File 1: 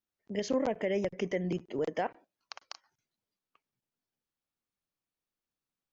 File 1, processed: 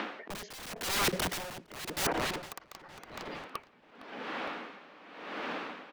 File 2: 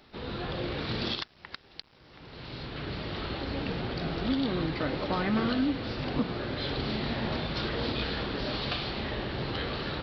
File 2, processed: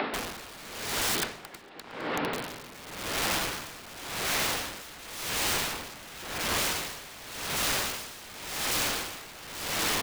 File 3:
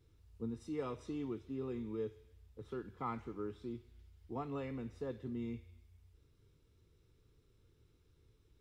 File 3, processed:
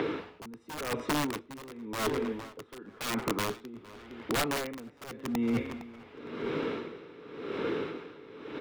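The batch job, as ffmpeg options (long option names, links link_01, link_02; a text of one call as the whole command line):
ffmpeg -i in.wav -filter_complex "[0:a]apsyclip=21dB,acrossover=split=200|4000[link_01][link_02][link_03];[link_02]acompressor=mode=upward:threshold=-14dB:ratio=2.5[link_04];[link_01][link_04][link_03]amix=inputs=3:normalize=0,acrossover=split=160 2800:gain=0.1 1 0.251[link_05][link_06][link_07];[link_05][link_06][link_07]amix=inputs=3:normalize=0,bandreject=frequency=360:width=12,aeval=exprs='(mod(5.01*val(0)+1,2)-1)/5.01':channel_layout=same,asplit=2[link_08][link_09];[link_09]adelay=460,lowpass=frequency=4100:poles=1,volume=-17dB,asplit=2[link_10][link_11];[link_11]adelay=460,lowpass=frequency=4100:poles=1,volume=0.49,asplit=2[link_12][link_13];[link_13]adelay=460,lowpass=frequency=4100:poles=1,volume=0.49,asplit=2[link_14][link_15];[link_15]adelay=460,lowpass=frequency=4100:poles=1,volume=0.49[link_16];[link_08][link_10][link_12][link_14][link_16]amix=inputs=5:normalize=0,areverse,acompressor=threshold=-34dB:ratio=6,areverse,aeval=exprs='val(0)*pow(10,-18*(0.5-0.5*cos(2*PI*0.91*n/s))/20)':channel_layout=same,volume=6.5dB" out.wav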